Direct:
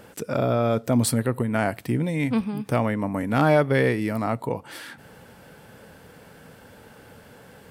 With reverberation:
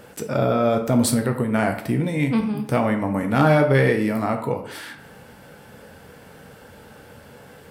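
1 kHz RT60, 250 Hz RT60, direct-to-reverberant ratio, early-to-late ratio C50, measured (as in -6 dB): 0.70 s, 0.60 s, 4.0 dB, 9.5 dB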